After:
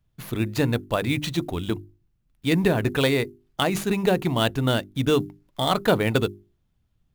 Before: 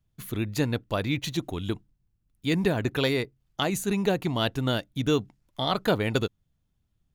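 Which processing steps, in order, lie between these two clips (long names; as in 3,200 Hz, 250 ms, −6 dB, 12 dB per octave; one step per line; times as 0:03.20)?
mains-hum notches 50/100/150/200/250/300/350/400 Hz
in parallel at −3 dB: sample-rate reduction 12,000 Hz, jitter 20%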